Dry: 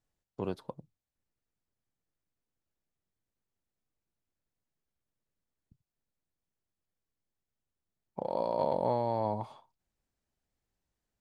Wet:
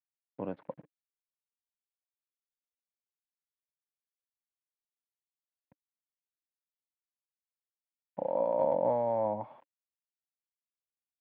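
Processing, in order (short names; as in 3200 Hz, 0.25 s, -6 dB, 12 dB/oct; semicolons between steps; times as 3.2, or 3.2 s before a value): bell 360 Hz -13 dB 0.66 oct; requantised 10-bit, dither none; speaker cabinet 160–2200 Hz, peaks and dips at 300 Hz +10 dB, 550 Hz +8 dB, 1200 Hz -5 dB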